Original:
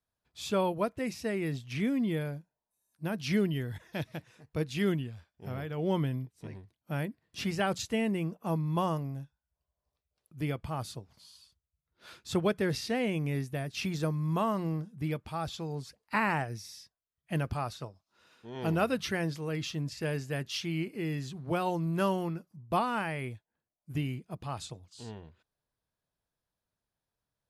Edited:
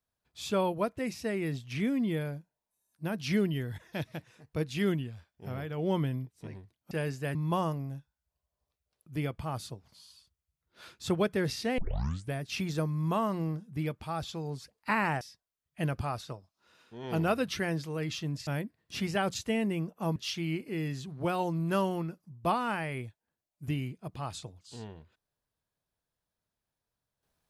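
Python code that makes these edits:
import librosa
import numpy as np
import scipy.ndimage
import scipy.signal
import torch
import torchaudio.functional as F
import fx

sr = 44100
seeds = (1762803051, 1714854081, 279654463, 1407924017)

y = fx.edit(x, sr, fx.swap(start_s=6.91, length_s=1.69, other_s=19.99, other_length_s=0.44),
    fx.tape_start(start_s=13.03, length_s=0.55),
    fx.cut(start_s=16.46, length_s=0.27), tone=tone)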